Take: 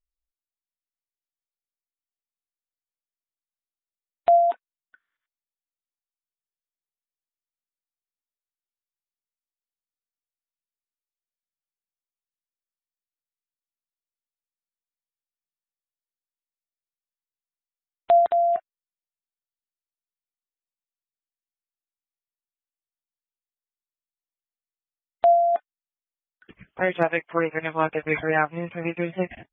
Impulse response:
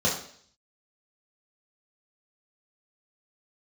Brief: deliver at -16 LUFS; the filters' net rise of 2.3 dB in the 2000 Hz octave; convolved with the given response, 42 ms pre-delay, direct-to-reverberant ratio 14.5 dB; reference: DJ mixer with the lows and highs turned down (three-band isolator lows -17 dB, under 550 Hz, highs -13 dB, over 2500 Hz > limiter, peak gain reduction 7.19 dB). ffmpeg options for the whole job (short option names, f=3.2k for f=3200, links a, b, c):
-filter_complex "[0:a]equalizer=f=2k:t=o:g=5,asplit=2[a][b];[1:a]atrim=start_sample=2205,adelay=42[c];[b][c]afir=irnorm=-1:irlink=0,volume=-27dB[d];[a][d]amix=inputs=2:normalize=0,acrossover=split=550 2500:gain=0.141 1 0.224[e][f][g];[e][f][g]amix=inputs=3:normalize=0,volume=10.5dB,alimiter=limit=-3.5dB:level=0:latency=1"